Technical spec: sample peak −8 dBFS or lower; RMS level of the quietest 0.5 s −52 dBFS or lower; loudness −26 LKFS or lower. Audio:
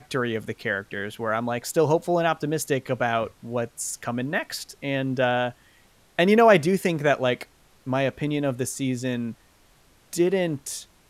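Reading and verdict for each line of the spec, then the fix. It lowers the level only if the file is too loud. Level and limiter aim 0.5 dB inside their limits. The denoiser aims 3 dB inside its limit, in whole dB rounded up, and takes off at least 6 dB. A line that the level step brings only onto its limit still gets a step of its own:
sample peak −6.0 dBFS: out of spec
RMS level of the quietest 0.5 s −58 dBFS: in spec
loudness −24.5 LKFS: out of spec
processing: level −2 dB
brickwall limiter −8.5 dBFS

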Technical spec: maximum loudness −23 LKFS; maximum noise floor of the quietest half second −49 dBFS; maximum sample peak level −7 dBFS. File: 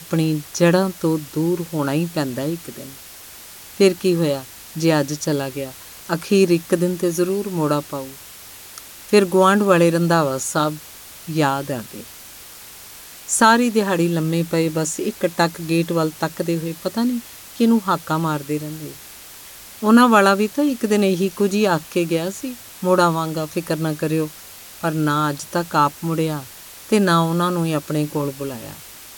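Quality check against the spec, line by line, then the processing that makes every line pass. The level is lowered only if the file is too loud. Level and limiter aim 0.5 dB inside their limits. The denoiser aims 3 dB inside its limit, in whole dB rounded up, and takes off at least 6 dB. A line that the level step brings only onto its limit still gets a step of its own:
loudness −19.5 LKFS: out of spec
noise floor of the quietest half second −40 dBFS: out of spec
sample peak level −1.5 dBFS: out of spec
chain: broadband denoise 8 dB, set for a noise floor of −40 dBFS
level −4 dB
brickwall limiter −7.5 dBFS

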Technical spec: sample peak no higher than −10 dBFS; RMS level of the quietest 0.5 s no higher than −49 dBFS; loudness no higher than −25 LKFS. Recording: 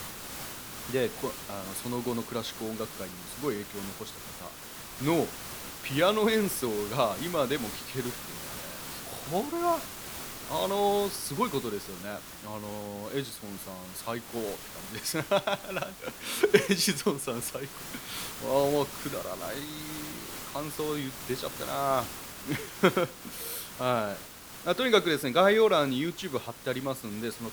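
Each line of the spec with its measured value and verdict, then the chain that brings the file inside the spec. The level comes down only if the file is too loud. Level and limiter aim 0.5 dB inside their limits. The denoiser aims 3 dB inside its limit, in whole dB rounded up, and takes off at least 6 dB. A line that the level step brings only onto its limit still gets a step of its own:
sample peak −6.0 dBFS: out of spec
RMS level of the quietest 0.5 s −45 dBFS: out of spec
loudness −31.0 LKFS: in spec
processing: broadband denoise 7 dB, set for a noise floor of −45 dBFS
brickwall limiter −10.5 dBFS

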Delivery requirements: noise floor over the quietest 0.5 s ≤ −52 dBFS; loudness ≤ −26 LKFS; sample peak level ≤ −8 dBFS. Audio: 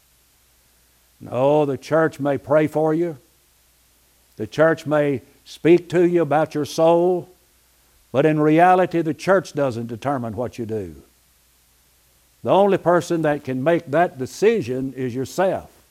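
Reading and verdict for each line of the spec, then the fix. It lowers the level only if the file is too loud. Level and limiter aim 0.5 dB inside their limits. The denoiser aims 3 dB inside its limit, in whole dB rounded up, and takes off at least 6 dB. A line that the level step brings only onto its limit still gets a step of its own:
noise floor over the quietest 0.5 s −58 dBFS: in spec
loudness −19.5 LKFS: out of spec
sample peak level −2.5 dBFS: out of spec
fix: level −7 dB

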